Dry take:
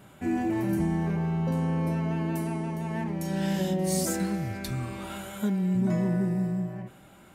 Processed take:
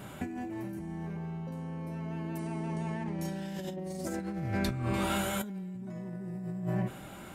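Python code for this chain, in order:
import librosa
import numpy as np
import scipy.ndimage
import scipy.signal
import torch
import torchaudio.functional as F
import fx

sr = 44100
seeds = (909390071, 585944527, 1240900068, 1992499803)

y = fx.high_shelf(x, sr, hz=3500.0, db=-11.5, at=(3.76, 4.94))
y = fx.over_compress(y, sr, threshold_db=-36.0, ratio=-1.0)
y = fx.ellip_lowpass(y, sr, hz=9500.0, order=4, stop_db=40, at=(2.37, 3.21), fade=0.02)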